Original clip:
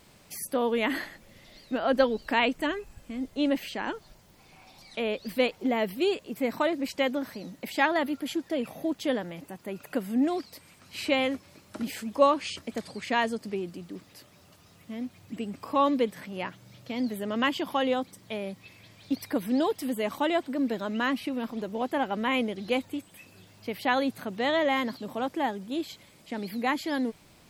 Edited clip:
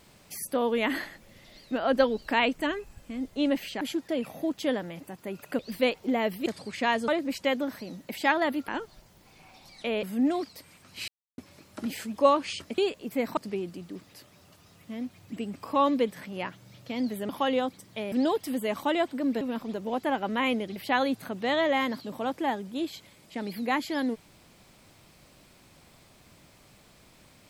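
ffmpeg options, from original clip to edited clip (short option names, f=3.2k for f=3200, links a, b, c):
-filter_complex "[0:a]asplit=15[a][b][c][d][e][f][g][h][i][j][k][l][m][n][o];[a]atrim=end=3.812[p];[b]atrim=start=8.218:end=10.002[q];[c]atrim=start=5.158:end=6.032[r];[d]atrim=start=12.748:end=13.372[s];[e]atrim=start=6.618:end=8.222[t];[f]atrim=start=3.808:end=5.162[u];[g]atrim=start=9.998:end=11.05,asetpts=PTS-STARTPTS,afade=t=out:st=1.048:d=0.004:c=hsin[v];[h]atrim=start=11.05:end=11.35,asetpts=PTS-STARTPTS,volume=0[w];[i]atrim=start=11.35:end=12.752,asetpts=PTS-STARTPTS,afade=t=in:d=0.004:c=hsin[x];[j]atrim=start=6.028:end=6.622[y];[k]atrim=start=13.368:end=17.292[z];[l]atrim=start=17.628:end=18.462[aa];[m]atrim=start=19.468:end=20.762[ab];[n]atrim=start=21.288:end=22.642[ac];[o]atrim=start=23.718[ad];[p][q]acrossfade=d=0.004:c1=hsin:c2=hsin[ae];[ae][r]acrossfade=d=0.004:c1=hsin:c2=hsin[af];[af][s]acrossfade=d=0.004:c1=hsin:c2=hsin[ag];[ag][t]acrossfade=d=0.004:c1=hsin:c2=hsin[ah];[ah][u]acrossfade=d=0.004:c1=hsin:c2=hsin[ai];[v][w][x]concat=n=3:v=0:a=1[aj];[ai][aj]acrossfade=d=0.004:c1=hsin:c2=hsin[ak];[ak][y]acrossfade=d=0.004:c1=hsin:c2=hsin[al];[al][z]acrossfade=d=0.004:c1=hsin:c2=hsin[am];[am][aa]acrossfade=d=0.004:c1=hsin:c2=hsin[an];[an][ab]acrossfade=d=0.004:c1=hsin:c2=hsin[ao];[ao][ac]acrossfade=d=0.004:c1=hsin:c2=hsin[ap];[ap][ad]acrossfade=d=0.004:c1=hsin:c2=hsin"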